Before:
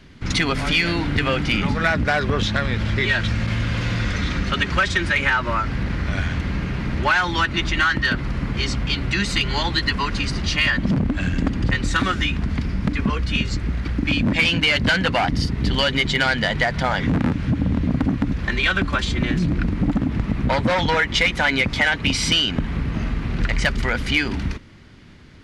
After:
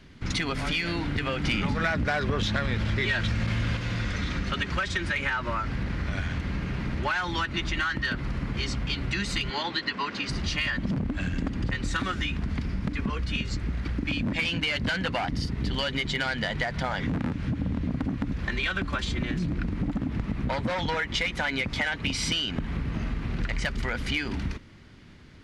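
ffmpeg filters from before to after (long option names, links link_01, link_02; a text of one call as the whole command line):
ffmpeg -i in.wav -filter_complex "[0:a]asettb=1/sr,asplit=3[link_01][link_02][link_03];[link_01]atrim=end=1.444[link_04];[link_02]atrim=start=1.44:end=3.77,asetpts=PTS-STARTPTS,afade=type=in:duration=0.004:curve=qsin,afade=type=out:start_time=2.326:duration=0.004:curve=qsin,acontrast=68[link_05];[link_03]atrim=start=3.766[link_06];[link_04][link_05]acrossfade=duration=0.004:curve1=hsin:curve2=qsin[link_07];[link_07][link_06]acrossfade=duration=0.004:curve1=qsin:curve2=hsin,asettb=1/sr,asplit=3[link_08][link_09][link_10];[link_08]atrim=end=9.504[link_11];[link_09]atrim=start=9.5:end=10.29,asetpts=PTS-STARTPTS,afade=type=in:duration=0.004:curve=qsin,afade=type=out:start_time=0.786:duration=0.004:curve=qsin,highpass=240,lowpass=5200[link_12];[link_10]atrim=start=10.286[link_13];[link_11][link_12]acrossfade=duration=0.004:curve1=hsin:curve2=qsin[link_14];[link_14][link_13]acrossfade=duration=0.004:curve1=qsin:curve2=hsin,acompressor=threshold=-21dB:ratio=3,volume=-4.5dB" out.wav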